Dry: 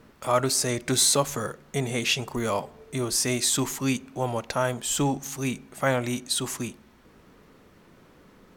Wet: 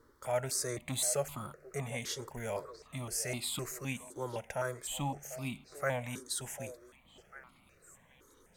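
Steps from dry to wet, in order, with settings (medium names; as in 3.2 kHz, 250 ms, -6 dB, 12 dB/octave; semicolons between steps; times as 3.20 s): on a send: repeats whose band climbs or falls 747 ms, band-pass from 540 Hz, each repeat 1.4 oct, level -10.5 dB; on the sum: stepped phaser 3.9 Hz 700–1700 Hz; trim -7.5 dB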